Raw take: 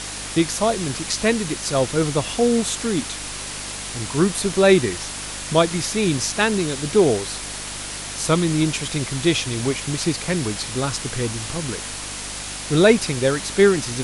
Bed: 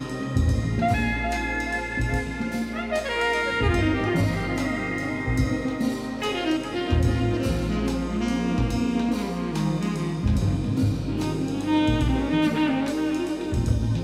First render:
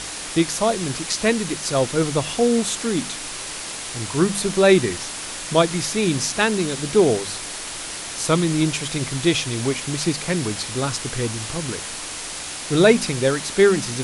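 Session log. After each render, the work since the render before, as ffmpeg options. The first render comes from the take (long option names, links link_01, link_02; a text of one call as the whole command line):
ffmpeg -i in.wav -af "bandreject=frequency=50:width_type=h:width=4,bandreject=frequency=100:width_type=h:width=4,bandreject=frequency=150:width_type=h:width=4,bandreject=frequency=200:width_type=h:width=4,bandreject=frequency=250:width_type=h:width=4" out.wav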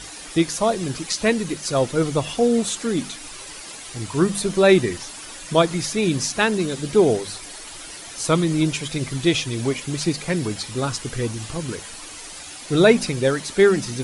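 ffmpeg -i in.wav -af "afftdn=noise_reduction=10:noise_floor=-32" out.wav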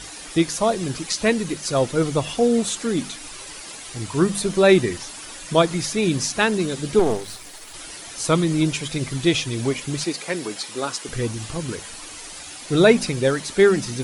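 ffmpeg -i in.wav -filter_complex "[0:a]asettb=1/sr,asplit=3[link_01][link_02][link_03];[link_01]atrim=end=6.994[link_04];[link_02]atrim=start=6.99:end=7.74,asetpts=PTS-STARTPTS,afade=type=in:duration=0.004:curve=qsin,afade=type=out:start_time=0.746:duration=0.004:curve=qsin,aeval=exprs='if(lt(val(0),0),0.251*val(0),val(0))':channel_layout=same[link_05];[link_03]atrim=start=7.736[link_06];[link_04][link_05]acrossfade=duration=0.004:curve1=hsin:curve2=qsin[link_07];[link_07][link_06]acrossfade=duration=0.004:curve1=qsin:curve2=hsin,asettb=1/sr,asplit=3[link_08][link_09][link_10];[link_08]atrim=end=10.044[link_11];[link_09]atrim=start=10.04:end=11.09,asetpts=PTS-STARTPTS,afade=type=in:duration=0.004:curve=qsin,afade=type=out:start_time=1.046:duration=0.004:curve=qsin,highpass=320[link_12];[link_10]atrim=start=11.086[link_13];[link_11][link_12]acrossfade=duration=0.004:curve1=hsin:curve2=qsin[link_14];[link_14][link_13]acrossfade=duration=0.004:curve1=qsin:curve2=hsin" out.wav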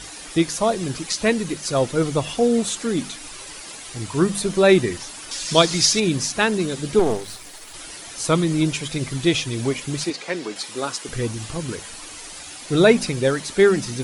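ffmpeg -i in.wav -filter_complex "[0:a]asettb=1/sr,asplit=3[link_01][link_02][link_03];[link_01]atrim=end=5.314[link_04];[link_02]atrim=start=5.31:end=6,asetpts=PTS-STARTPTS,afade=type=in:duration=0.004:curve=qsin,afade=type=out:start_time=0.686:duration=0.004:curve=qsin,equalizer=frequency=5100:width_type=o:width=1.5:gain=13.5[link_05];[link_03]atrim=start=5.996[link_06];[link_04][link_05]acrossfade=duration=0.004:curve1=hsin:curve2=qsin[link_07];[link_07][link_06]acrossfade=duration=0.004:curve1=qsin:curve2=hsin,asettb=1/sr,asplit=3[link_08][link_09][link_10];[link_08]atrim=end=10.104[link_11];[link_09]atrim=start=10.1:end=10.56,asetpts=PTS-STARTPTS,afade=type=in:duration=0.004:curve=qsin,afade=type=out:start_time=0.456:duration=0.004:curve=qsin,highpass=180,lowpass=6100[link_12];[link_10]atrim=start=10.556[link_13];[link_11][link_12]acrossfade=duration=0.004:curve1=hsin:curve2=qsin[link_14];[link_14][link_13]acrossfade=duration=0.004:curve1=qsin:curve2=hsin" out.wav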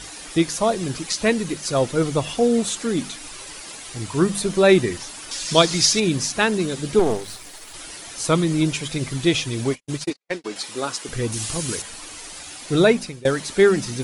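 ffmpeg -i in.wav -filter_complex "[0:a]asplit=3[link_01][link_02][link_03];[link_01]afade=type=out:start_time=9.63:duration=0.02[link_04];[link_02]agate=range=-56dB:threshold=-27dB:ratio=16:release=100:detection=peak,afade=type=in:start_time=9.63:duration=0.02,afade=type=out:start_time=10.44:duration=0.02[link_05];[link_03]afade=type=in:start_time=10.44:duration=0.02[link_06];[link_04][link_05][link_06]amix=inputs=3:normalize=0,asettb=1/sr,asplit=3[link_07][link_08][link_09];[link_07]atrim=end=11.324[link_10];[link_08]atrim=start=11.32:end=11.82,asetpts=PTS-STARTPTS,afade=type=in:duration=0.004:curve=qsin,afade=type=out:start_time=0.496:duration=0.004:curve=qsin,highshelf=frequency=3900:gain=12[link_11];[link_09]atrim=start=11.816[link_12];[link_10][link_11]acrossfade=duration=0.004:curve1=hsin:curve2=qsin[link_13];[link_13][link_12]acrossfade=duration=0.004:curve1=qsin:curve2=hsin,asplit=2[link_14][link_15];[link_14]atrim=end=13.25,asetpts=PTS-STARTPTS,afade=type=out:start_time=12.78:duration=0.47:silence=0.0794328[link_16];[link_15]atrim=start=13.25,asetpts=PTS-STARTPTS,afade=type=in:duration=0.004:curve=hsin:silence=0.0794328[link_17];[link_16][link_17]concat=n=2:v=0:a=1" out.wav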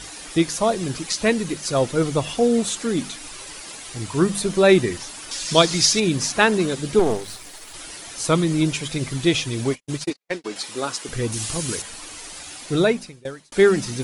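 ffmpeg -i in.wav -filter_complex "[0:a]asettb=1/sr,asplit=3[link_01][link_02][link_03];[link_01]atrim=end=6.214[link_04];[link_02]atrim=start=6.21:end=6.75,asetpts=PTS-STARTPTS,afade=type=in:duration=0.004:curve=qsin,afade=type=out:start_time=0.536:duration=0.004:curve=qsin,equalizer=frequency=920:width_type=o:width=3:gain=4[link_05];[link_03]atrim=start=6.746[link_06];[link_04][link_05]acrossfade=duration=0.004:curve1=hsin:curve2=qsin[link_07];[link_07][link_06]acrossfade=duration=0.004:curve1=qsin:curve2=hsin,asplit=2[link_08][link_09];[link_08]atrim=end=13.52,asetpts=PTS-STARTPTS,afade=type=out:start_time=12.59:duration=0.93[link_10];[link_09]atrim=start=13.52,asetpts=PTS-STARTPTS,afade=type=in:duration=0.004:curve=hsin[link_11];[link_10][link_11]concat=n=2:v=0:a=1" out.wav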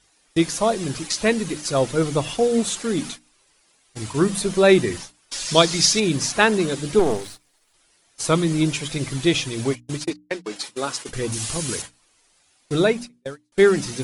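ffmpeg -i in.wav -af "agate=range=-24dB:threshold=-32dB:ratio=16:detection=peak,bandreject=frequency=60:width_type=h:width=6,bandreject=frequency=120:width_type=h:width=6,bandreject=frequency=180:width_type=h:width=6,bandreject=frequency=240:width_type=h:width=6,bandreject=frequency=300:width_type=h:width=6" out.wav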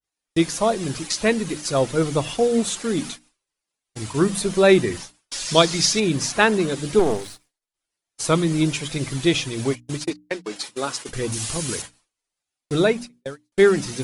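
ffmpeg -i in.wav -af "agate=range=-33dB:threshold=-46dB:ratio=3:detection=peak,adynamicequalizer=threshold=0.0282:dfrequency=3000:dqfactor=0.7:tfrequency=3000:tqfactor=0.7:attack=5:release=100:ratio=0.375:range=2:mode=cutabove:tftype=highshelf" out.wav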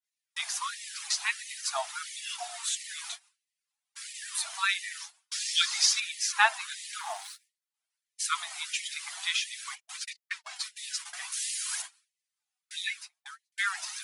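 ffmpeg -i in.wav -af "flanger=delay=1.1:depth=5.2:regen=50:speed=0.5:shape=triangular,afftfilt=real='re*gte(b*sr/1024,620*pow(1800/620,0.5+0.5*sin(2*PI*1.5*pts/sr)))':imag='im*gte(b*sr/1024,620*pow(1800/620,0.5+0.5*sin(2*PI*1.5*pts/sr)))':win_size=1024:overlap=0.75" out.wav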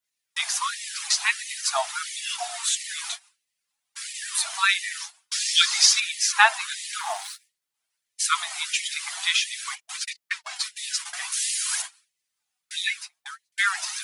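ffmpeg -i in.wav -af "volume=7dB,alimiter=limit=-2dB:level=0:latency=1" out.wav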